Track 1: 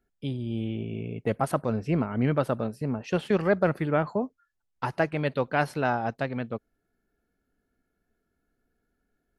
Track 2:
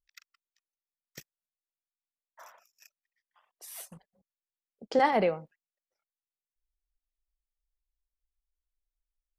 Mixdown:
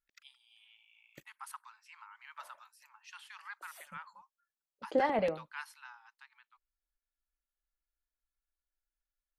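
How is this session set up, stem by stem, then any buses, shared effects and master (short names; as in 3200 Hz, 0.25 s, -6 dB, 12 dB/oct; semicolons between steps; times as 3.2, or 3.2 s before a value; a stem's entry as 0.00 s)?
5.66 s -14.5 dB -> 5.93 s -22 dB, 0.00 s, no send, steep high-pass 880 Hz 96 dB/oct; high shelf 4600 Hz +8 dB
-6.5 dB, 0.00 s, no send, high shelf 9500 Hz -10 dB; small resonant body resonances 310/570 Hz, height 8 dB; LFO notch square 5.3 Hz 350–5400 Hz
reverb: off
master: dry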